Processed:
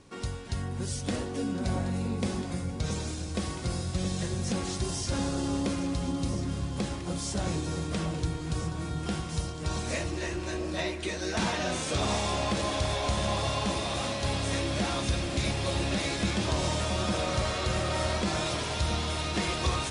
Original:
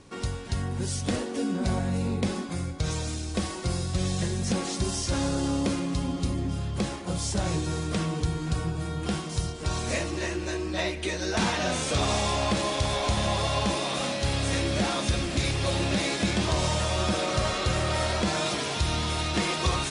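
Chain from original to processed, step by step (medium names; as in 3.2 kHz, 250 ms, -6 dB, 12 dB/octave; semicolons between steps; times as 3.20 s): echo whose repeats swap between lows and highs 672 ms, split 1.3 kHz, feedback 65%, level -7.5 dB; trim -3.5 dB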